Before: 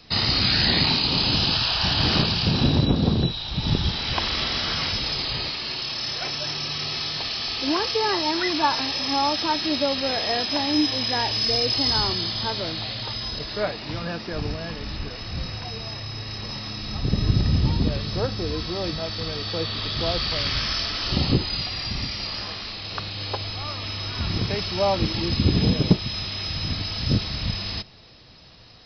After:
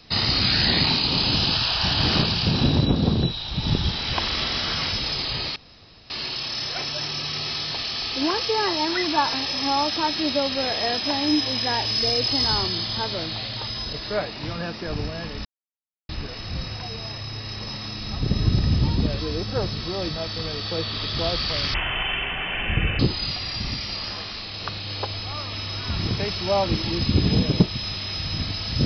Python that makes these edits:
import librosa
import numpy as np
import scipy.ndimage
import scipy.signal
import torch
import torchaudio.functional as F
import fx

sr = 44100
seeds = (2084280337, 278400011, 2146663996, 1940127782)

y = fx.edit(x, sr, fx.insert_room_tone(at_s=5.56, length_s=0.54),
    fx.insert_silence(at_s=14.91, length_s=0.64),
    fx.reverse_span(start_s=18.02, length_s=0.6),
    fx.speed_span(start_s=20.56, length_s=0.74, speed=0.59), tone=tone)